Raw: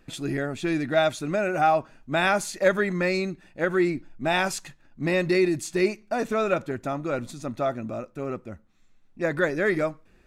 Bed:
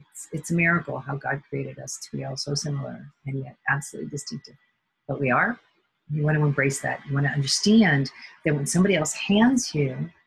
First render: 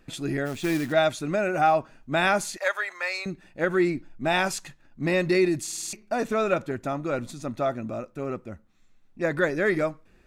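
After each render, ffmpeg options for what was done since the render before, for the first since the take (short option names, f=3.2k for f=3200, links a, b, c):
-filter_complex "[0:a]asplit=3[a][b][c];[a]afade=t=out:st=0.45:d=0.02[d];[b]acrusher=bits=3:mode=log:mix=0:aa=0.000001,afade=t=in:st=0.45:d=0.02,afade=t=out:st=0.91:d=0.02[e];[c]afade=t=in:st=0.91:d=0.02[f];[d][e][f]amix=inputs=3:normalize=0,asettb=1/sr,asplit=3[g][h][i];[g]atrim=end=2.574[j];[h]atrim=start=2.57:end=3.26,asetpts=PTS-STARTPTS,afade=t=in:d=0.004:c=qsin,afade=t=out:st=0.686:d=0.004:c=qsin,highpass=f=700:w=0.5412,highpass=f=700:w=1.3066[k];[i]atrim=start=3.256[l];[j][k]acrossfade=d=0.004:c1=hsin:c2=qsin[m];[m][l]acrossfade=d=0.004:c1=qsin:c2=hsin,asplit=7[n][o][p][q][r][s][t];[n]atrim=end=5.682[u];[o]atrim=start=5.628:end=5.682[v];[p]atrim=start=5.628:end=5.682[w];[q]atrim=start=5.628:end=5.682[x];[r]atrim=start=5.628:end=5.682[y];[s]atrim=start=5.628:end=5.682[z];[t]atrim=start=5.928[aa];[u][v]acrossfade=d=0.004:c1=hsin:c2=hsin[ab];[ab][w]acrossfade=d=0.004:c1=hsin:c2=hsin[ac];[ac][x]acrossfade=d=0.004:c1=hsin:c2=hsin[ad];[ad][y]acrossfade=d=0.004:c1=hsin:c2=hsin[ae];[ae][z]acrossfade=d=0.004:c1=hsin:c2=hsin[af];[af][aa]acrossfade=d=0.004:c1=hsin:c2=hsin"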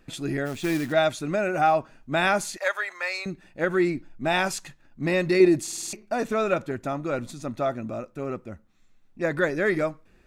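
-filter_complex "[0:a]asettb=1/sr,asplit=3[a][b][c];[a]atrim=end=5.404[d];[b]atrim=start=5.4:end=6.06,asetpts=PTS-STARTPTS,afade=t=in:d=0.004:c=qsin,afade=t=out:st=0.656:d=0.004:c=qsin,equalizer=f=490:w=0.62:g=7[e];[c]atrim=start=6.056[f];[d][e]acrossfade=d=0.004:c1=hsin:c2=qsin[g];[g][f]acrossfade=d=0.004:c1=qsin:c2=hsin"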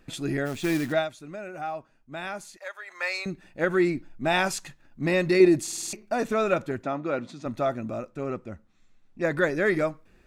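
-filter_complex "[0:a]asettb=1/sr,asplit=3[a][b][c];[a]atrim=end=6.834[d];[b]atrim=start=6.83:end=7.46,asetpts=PTS-STARTPTS,afade=t=in:d=0.004:c=qsin,afade=t=out:st=0.626:d=0.004:c=qsin,highpass=170,lowpass=4.3k[e];[c]atrim=start=7.456[f];[d][e]acrossfade=d=0.004:c1=hsin:c2=qsin[g];[g][f]acrossfade=d=0.004:c1=qsin:c2=hsin,asettb=1/sr,asplit=3[h][i][j];[h]atrim=end=8.094[k];[i]atrim=start=8.09:end=9.25,asetpts=PTS-STARTPTS,afade=t=in:d=0.004:c=qsin,afade=t=out:st=1.156:d=0.004:c=qsin,lowpass=8.8k[l];[j]atrim=start=9.246[m];[k][l]acrossfade=d=0.004:c1=hsin:c2=qsin[n];[n][m]acrossfade=d=0.004:c1=qsin:c2=hsin,asplit=3[o][p][q];[o]atrim=end=1.08,asetpts=PTS-STARTPTS,afade=t=out:st=0.91:d=0.17:silence=0.237137[r];[p]atrim=start=1.08:end=2.85,asetpts=PTS-STARTPTS,volume=-12.5dB[s];[q]atrim=start=2.85,asetpts=PTS-STARTPTS,afade=t=in:d=0.17:silence=0.237137[t];[r][s][t]concat=n=3:v=0:a=1"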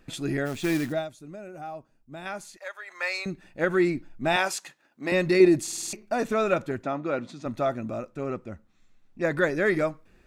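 -filter_complex "[0:a]asettb=1/sr,asplit=3[a][b][c];[a]atrim=end=0.894[d];[b]atrim=start=0.89:end=2.26,asetpts=PTS-STARTPTS,afade=t=in:d=0.004:c=qsin,afade=t=out:st=1.366:d=0.004:c=qsin,equalizer=f=1.9k:w=0.42:g=-9[e];[c]atrim=start=2.256[f];[d][e]acrossfade=d=0.004:c1=hsin:c2=qsin[g];[g][f]acrossfade=d=0.004:c1=qsin:c2=hsin,asettb=1/sr,asplit=3[h][i][j];[h]atrim=end=4.364[k];[i]atrim=start=4.36:end=5.12,asetpts=PTS-STARTPTS,afade=t=in:d=0.004:c=qsin,afade=t=out:st=0.756:d=0.004:c=qsin,highpass=370[l];[j]atrim=start=5.116[m];[k][l]acrossfade=d=0.004:c1=hsin:c2=qsin[n];[n][m]acrossfade=d=0.004:c1=qsin:c2=hsin"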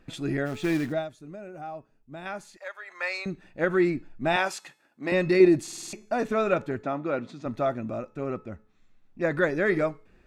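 -af "highshelf=f=5.4k:g=-9.5,bandreject=f=429.8:t=h:w=4,bandreject=f=859.6:t=h:w=4,bandreject=f=1.2894k:t=h:w=4,bandreject=f=1.7192k:t=h:w=4,bandreject=f=2.149k:t=h:w=4,bandreject=f=2.5788k:t=h:w=4,bandreject=f=3.0086k:t=h:w=4,bandreject=f=3.4384k:t=h:w=4,bandreject=f=3.8682k:t=h:w=4,bandreject=f=4.298k:t=h:w=4,bandreject=f=4.7278k:t=h:w=4,bandreject=f=5.1576k:t=h:w=4,bandreject=f=5.5874k:t=h:w=4,bandreject=f=6.0172k:t=h:w=4,bandreject=f=6.447k:t=h:w=4,bandreject=f=6.8768k:t=h:w=4,bandreject=f=7.3066k:t=h:w=4,bandreject=f=7.7364k:t=h:w=4,bandreject=f=8.1662k:t=h:w=4,bandreject=f=8.596k:t=h:w=4,bandreject=f=9.0258k:t=h:w=4,bandreject=f=9.4556k:t=h:w=4,bandreject=f=9.8854k:t=h:w=4,bandreject=f=10.3152k:t=h:w=4,bandreject=f=10.745k:t=h:w=4,bandreject=f=11.1748k:t=h:w=4,bandreject=f=11.6046k:t=h:w=4,bandreject=f=12.0344k:t=h:w=4,bandreject=f=12.4642k:t=h:w=4"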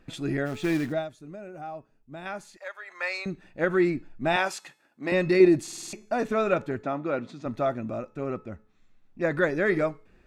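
-af anull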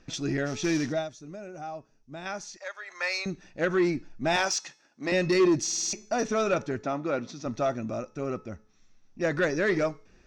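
-af "lowpass=f=5.8k:t=q:w=7.9,asoftclip=type=tanh:threshold=-16.5dB"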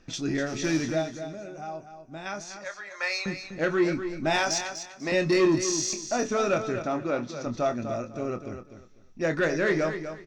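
-filter_complex "[0:a]asplit=2[a][b];[b]adelay=25,volume=-8.5dB[c];[a][c]amix=inputs=2:normalize=0,aecho=1:1:247|494|741:0.335|0.077|0.0177"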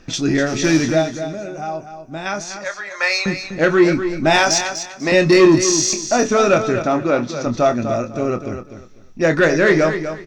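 -af "volume=11dB"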